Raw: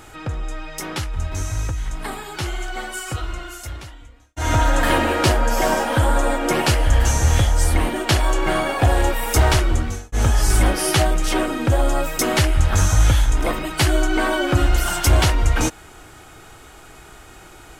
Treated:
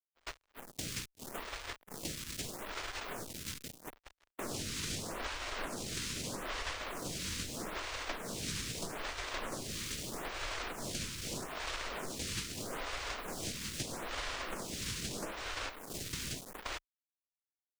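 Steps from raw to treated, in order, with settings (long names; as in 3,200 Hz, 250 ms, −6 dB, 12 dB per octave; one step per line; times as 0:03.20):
low-shelf EQ 190 Hz −10.5 dB
single-tap delay 1,086 ms −7.5 dB
cochlear-implant simulation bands 1
bit reduction 5 bits
automatic gain control gain up to 6 dB
downward expander −26 dBFS
ring modulation 830 Hz
spectral tilt −2 dB per octave
downward compressor 5 to 1, threshold −36 dBFS, peak gain reduction 18.5 dB
phaser with staggered stages 0.79 Hz
level +1 dB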